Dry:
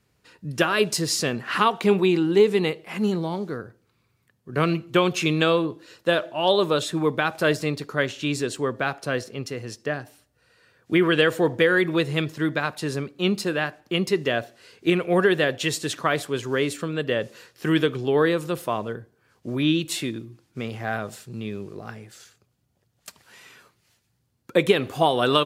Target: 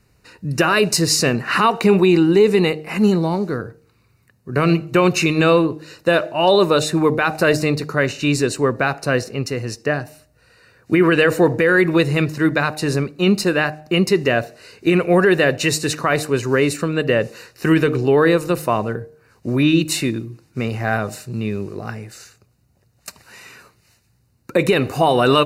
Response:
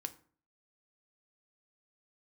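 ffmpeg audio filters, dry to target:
-af "asuperstop=centerf=3300:order=8:qfactor=5.5,lowshelf=frequency=68:gain=10.5,bandreject=frequency=153.6:width_type=h:width=4,bandreject=frequency=307.2:width_type=h:width=4,bandreject=frequency=460.8:width_type=h:width=4,bandreject=frequency=614.4:width_type=h:width=4,bandreject=frequency=768:width_type=h:width=4,alimiter=limit=-12.5dB:level=0:latency=1:release=22,volume=7.5dB"

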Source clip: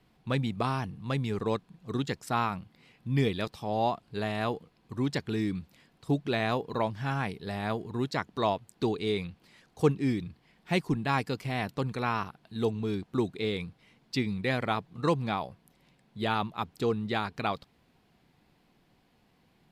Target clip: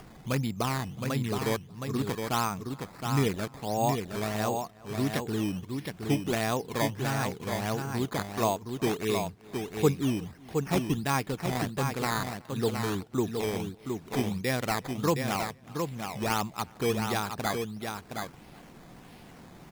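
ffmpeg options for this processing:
ffmpeg -i in.wav -filter_complex "[0:a]acrusher=samples=11:mix=1:aa=0.000001:lfo=1:lforange=11:lforate=1.5,asplit=2[link_01][link_02];[link_02]adelay=367.3,volume=-27dB,highshelf=frequency=4000:gain=-8.27[link_03];[link_01][link_03]amix=inputs=2:normalize=0,acompressor=mode=upward:threshold=-36dB:ratio=2.5,asplit=2[link_04][link_05];[link_05]aecho=0:1:717:0.531[link_06];[link_04][link_06]amix=inputs=2:normalize=0" out.wav

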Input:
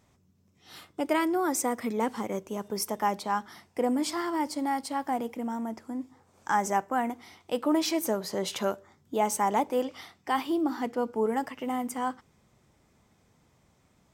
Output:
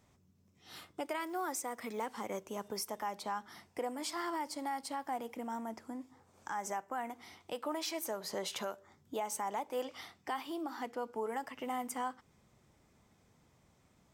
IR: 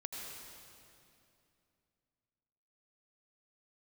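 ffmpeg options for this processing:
-filter_complex "[0:a]acrossover=split=510[link_01][link_02];[link_01]acompressor=threshold=-40dB:ratio=6[link_03];[link_03][link_02]amix=inputs=2:normalize=0,alimiter=level_in=1dB:limit=-24dB:level=0:latency=1:release=263,volume=-1dB,asettb=1/sr,asplit=3[link_04][link_05][link_06];[link_04]atrim=end=1.204[link_07];[link_05]atrim=start=1.2:end=2.06,asetpts=PTS-STARTPTS,afade=type=in:duration=0.004:curve=qsin,afade=type=out:start_time=0.856:duration=0.004:curve=qsin,acrusher=bits=7:mode=log:mix=0:aa=0.000001[link_08];[link_06]atrim=start=2.056[link_09];[link_07][link_08]acrossfade=duration=0.004:curve1=hsin:curve2=qsin[link_10];[link_10][link_09]acrossfade=duration=0.004:curve1=qsin:curve2=hsin,volume=-3dB"

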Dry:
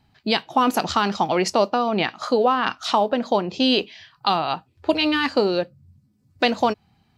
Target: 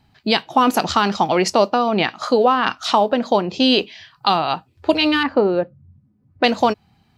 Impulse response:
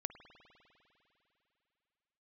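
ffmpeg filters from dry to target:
-filter_complex "[0:a]asettb=1/sr,asplit=3[link_01][link_02][link_03];[link_01]atrim=end=5.234[link_04];[link_02]atrim=start=5.23:end=6.44,asetpts=PTS-STARTPTS,afade=type=in:duration=0.004:curve=qsin,afade=type=out:start_time=1.206:duration=0.004:curve=qsin,lowpass=1500[link_05];[link_03]atrim=start=6.436[link_06];[link_04][link_05]acrossfade=duration=0.004:curve1=hsin:curve2=qsin[link_07];[link_07][link_06]acrossfade=duration=0.004:curve1=qsin:curve2=hsin,volume=3.5dB"

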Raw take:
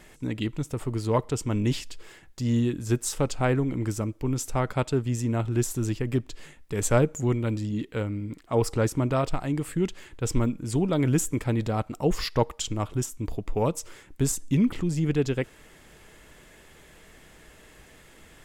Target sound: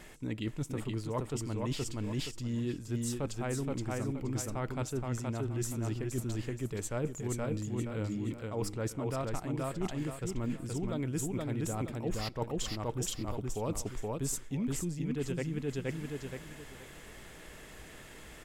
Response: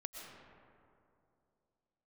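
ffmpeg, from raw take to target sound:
-af "aecho=1:1:473|946|1419|1892:0.708|0.177|0.0442|0.0111,areverse,acompressor=threshold=-32dB:ratio=6,areverse"

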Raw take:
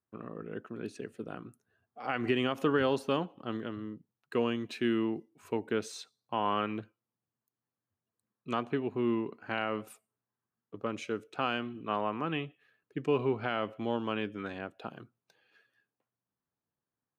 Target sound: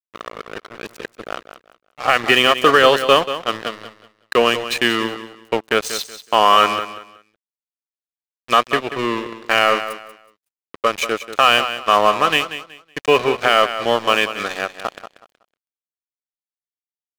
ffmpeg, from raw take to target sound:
ffmpeg -i in.wav -af "highpass=frequency=1100:poles=1,aecho=1:1:1.7:0.39,aeval=exprs='sgn(val(0))*max(abs(val(0))-0.00422,0)':channel_layout=same,aecho=1:1:186|372|558:0.251|0.0628|0.0157,apsyclip=26dB,volume=-2dB" out.wav

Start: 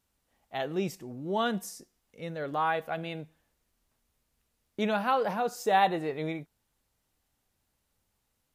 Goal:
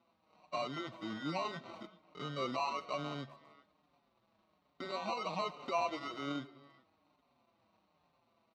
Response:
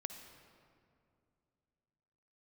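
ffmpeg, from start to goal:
-filter_complex "[0:a]highshelf=frequency=2400:gain=-10,acompressor=threshold=-48dB:ratio=3,alimiter=level_in=15.5dB:limit=-24dB:level=0:latency=1:release=120,volume=-15.5dB,acrusher=bits=4:mode=log:mix=0:aa=0.000001,asetrate=39289,aresample=44100,atempo=1.12246,acrusher=samples=26:mix=1:aa=0.000001,highpass=190,equalizer=frequency=430:width_type=q:width=4:gain=-7,equalizer=frequency=650:width_type=q:width=4:gain=4,equalizer=frequency=1100:width_type=q:width=4:gain=7,equalizer=frequency=3700:width_type=q:width=4:gain=6,lowpass=frequency=5200:width=0.5412,lowpass=frequency=5200:width=1.3066,asplit=2[link_01][link_02];[link_02]adelay=390,highpass=300,lowpass=3400,asoftclip=type=hard:threshold=-40dB,volume=-17dB[link_03];[link_01][link_03]amix=inputs=2:normalize=0,asplit=2[link_04][link_05];[1:a]atrim=start_sample=2205,afade=type=out:start_time=0.43:duration=0.01,atrim=end_sample=19404[link_06];[link_05][link_06]afir=irnorm=-1:irlink=0,volume=-7.5dB[link_07];[link_04][link_07]amix=inputs=2:normalize=0,asplit=2[link_08][link_09];[link_09]adelay=5.5,afreqshift=-1.2[link_10];[link_08][link_10]amix=inputs=2:normalize=1,volume=9.5dB"

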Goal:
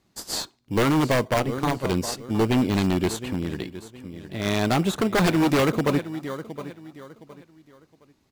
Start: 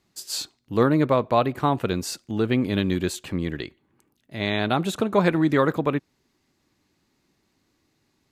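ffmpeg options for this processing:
ffmpeg -i in.wav -filter_complex "[0:a]asettb=1/sr,asplit=3[link_01][link_02][link_03];[link_01]atrim=end=1.344[link_04];[link_02]atrim=start=1.34:end=1.86,asetpts=PTS-STARTPTS,afade=type=in:duration=0.004:curve=qsin,afade=type=out:start_time=0.516:duration=0.004:curve=qsin,tremolo=f=130:d=0.824[link_05];[link_03]atrim=start=1.856[link_06];[link_04][link_05]acrossfade=duration=0.004:curve1=hsin:curve2=qsin[link_07];[link_07][link_06]acrossfade=duration=0.004:curve1=qsin:curve2=hsin,asettb=1/sr,asplit=3[link_08][link_09][link_10];[link_08]atrim=end=5.144[link_11];[link_09]atrim=start=5.14:end=5.6,asetpts=PTS-STARTPTS,afade=type=in:duration=0.004:curve=qsin,afade=type=out:start_time=0.456:duration=0.004:curve=qsin,highshelf=frequency=3700:gain=10.5[link_12];[link_10]atrim=start=5.596[link_13];[link_11][link_12]acrossfade=duration=0.004:curve1=hsin:curve2=qsin[link_14];[link_14][link_13]acrossfade=duration=0.004:curve1=qsin:curve2=hsin,asplit=2[link_15][link_16];[link_16]acrusher=samples=17:mix=1:aa=0.000001,volume=-7dB[link_17];[link_15][link_17]amix=inputs=2:normalize=0,aecho=1:1:715|1430|2145:0.178|0.0533|0.016,aeval=exprs='0.2*(abs(mod(val(0)/0.2+3,4)-2)-1)':channel_layout=same,asplit=3[link_18][link_19][link_20];[link_18]afade=type=out:start_time=3.31:duration=0.02[link_21];[link_19]acompressor=threshold=-30dB:ratio=1.5,afade=type=in:start_time=3.31:duration=0.02,afade=type=out:start_time=4.44:duration=0.02[link_22];[link_20]afade=type=in:start_time=4.44:duration=0.02[link_23];[link_21][link_22][link_23]amix=inputs=3:normalize=0" out.wav

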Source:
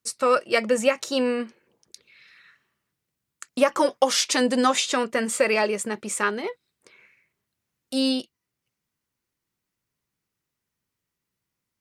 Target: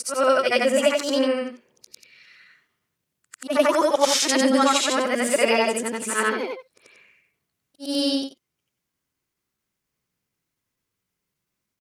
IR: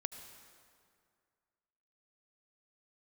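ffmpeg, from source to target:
-af "afftfilt=real='re':imag='-im':win_size=8192:overlap=0.75,asetrate=46722,aresample=44100,atempo=0.943874,volume=6.5dB"

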